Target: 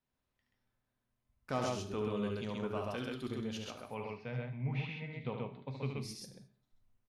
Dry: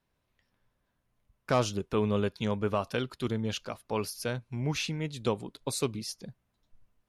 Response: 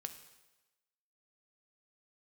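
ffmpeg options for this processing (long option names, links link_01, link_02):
-filter_complex "[0:a]asettb=1/sr,asplit=3[link_01][link_02][link_03];[link_01]atrim=end=3.824[link_04];[link_02]atrim=start=3.82:end=5.98,asetpts=PTS-STARTPTS,afade=type=in:duration=0.004:curve=qsin,afade=type=out:start_time=2.156:duration=0.004:curve=qsin,highpass=100,equalizer=frequency=130:width_type=q:width=4:gain=10,equalizer=frequency=340:width_type=q:width=4:gain=-10,equalizer=frequency=1400:width_type=q:width=4:gain=-5,equalizer=frequency=2200:width_type=q:width=4:gain=6,lowpass=frequency=2800:width=0.5412,lowpass=frequency=2800:width=1.3066[link_05];[link_03]atrim=start=5.976[link_06];[link_04][link_05]acrossfade=duration=0.004:curve1=hsin:curve2=qsin[link_07];[link_07][link_06]acrossfade=duration=0.004:curve1=qsin:curve2=hsin,aecho=1:1:72.89|131.2:0.501|0.794[link_08];[1:a]atrim=start_sample=2205,afade=type=out:start_time=0.42:duration=0.01,atrim=end_sample=18963,asetrate=70560,aresample=44100[link_09];[link_08][link_09]afir=irnorm=-1:irlink=0,volume=-3dB"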